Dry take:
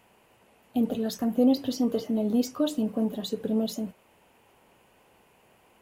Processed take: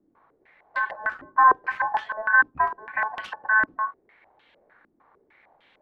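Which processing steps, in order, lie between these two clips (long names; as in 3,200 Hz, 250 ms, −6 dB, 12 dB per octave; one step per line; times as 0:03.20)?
stylus tracing distortion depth 0.43 ms
ring modulation 1,300 Hz
low-pass on a step sequencer 6.6 Hz 290–3,100 Hz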